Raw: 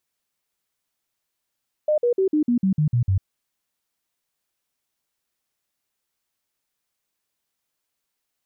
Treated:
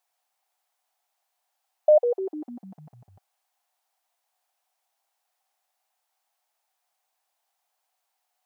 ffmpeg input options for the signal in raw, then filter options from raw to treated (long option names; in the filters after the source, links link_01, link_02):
-f lavfi -i "aevalsrc='0.158*clip(min(mod(t,0.15),0.1-mod(t,0.15))/0.005,0,1)*sin(2*PI*607*pow(2,-floor(t/0.15)/3)*mod(t,0.15))':duration=1.35:sample_rate=44100"
-af "highpass=frequency=750:width_type=q:width=6.4"